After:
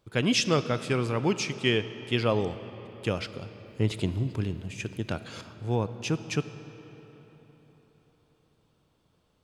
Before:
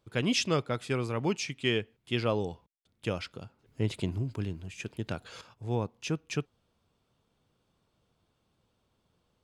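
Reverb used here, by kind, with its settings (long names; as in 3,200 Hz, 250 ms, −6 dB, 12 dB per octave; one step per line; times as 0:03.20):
comb and all-pass reverb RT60 4.3 s, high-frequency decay 0.65×, pre-delay 0 ms, DRR 12 dB
level +3.5 dB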